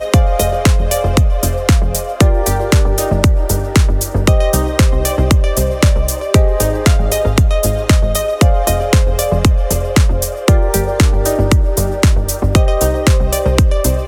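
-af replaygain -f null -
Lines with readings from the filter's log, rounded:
track_gain = -4.1 dB
track_peak = 0.614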